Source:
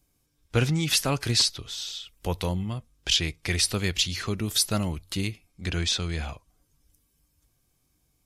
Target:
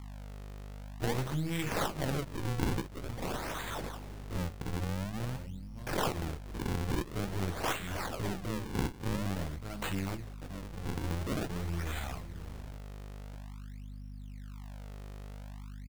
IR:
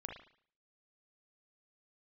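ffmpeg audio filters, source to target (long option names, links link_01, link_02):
-filter_complex "[0:a]aeval=exprs='if(lt(val(0),0),0.447*val(0),val(0))':channel_layout=same,lowshelf=frequency=250:gain=-4,atempo=0.52,asplit=2[link_01][link_02];[link_02]aecho=0:1:590:0.2[link_03];[link_01][link_03]amix=inputs=2:normalize=0,flanger=delay=9.9:depth=6.4:regen=-30:speed=1.6:shape=sinusoidal,aeval=exprs='val(0)+0.00398*(sin(2*PI*50*n/s)+sin(2*PI*2*50*n/s)/2+sin(2*PI*3*50*n/s)/3+sin(2*PI*4*50*n/s)/4+sin(2*PI*5*50*n/s)/5)':channel_layout=same,acompressor=threshold=-39dB:ratio=2,acrusher=samples=40:mix=1:aa=0.000001:lfo=1:lforange=64:lforate=0.48,volume=5dB"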